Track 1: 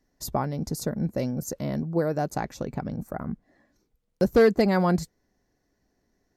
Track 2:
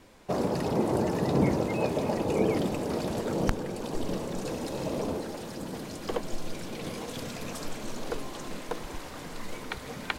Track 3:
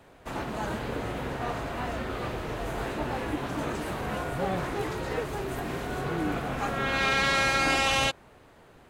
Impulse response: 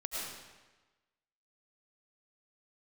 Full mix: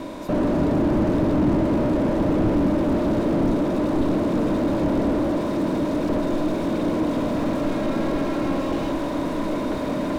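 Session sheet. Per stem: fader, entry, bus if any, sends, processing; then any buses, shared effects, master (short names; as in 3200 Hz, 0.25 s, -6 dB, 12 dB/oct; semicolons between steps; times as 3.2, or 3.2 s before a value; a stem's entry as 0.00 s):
-16.5 dB, 0.00 s, no send, dry
-2.0 dB, 0.00 s, send -16.5 dB, per-bin compression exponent 0.6
-5.5 dB, 0.80 s, no send, ensemble effect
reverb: on, RT60 1.2 s, pre-delay 65 ms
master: small resonant body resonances 300/600/980/3700 Hz, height 15 dB, ringing for 35 ms; slew limiter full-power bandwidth 42 Hz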